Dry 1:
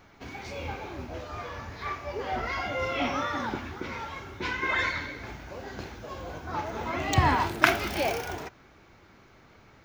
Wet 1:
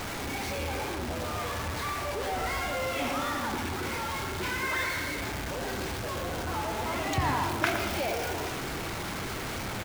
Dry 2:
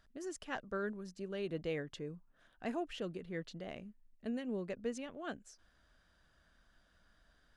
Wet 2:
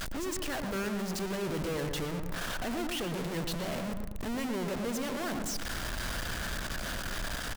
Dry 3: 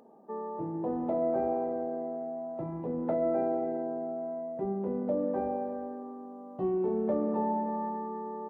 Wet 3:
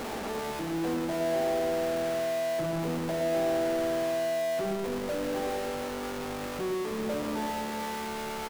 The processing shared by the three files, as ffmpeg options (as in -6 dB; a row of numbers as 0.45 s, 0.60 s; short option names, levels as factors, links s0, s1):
-filter_complex "[0:a]aeval=exprs='val(0)+0.5*0.0891*sgn(val(0))':c=same,asplit=2[s0][s1];[s1]adelay=115,lowpass=f=1400:p=1,volume=0.562,asplit=2[s2][s3];[s3]adelay=115,lowpass=f=1400:p=1,volume=0.51,asplit=2[s4][s5];[s5]adelay=115,lowpass=f=1400:p=1,volume=0.51,asplit=2[s6][s7];[s7]adelay=115,lowpass=f=1400:p=1,volume=0.51,asplit=2[s8][s9];[s9]adelay=115,lowpass=f=1400:p=1,volume=0.51,asplit=2[s10][s11];[s11]adelay=115,lowpass=f=1400:p=1,volume=0.51[s12];[s0][s2][s4][s6][s8][s10][s12]amix=inputs=7:normalize=0,volume=0.355"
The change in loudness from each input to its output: -1.0 LU, +7.5 LU, +1.5 LU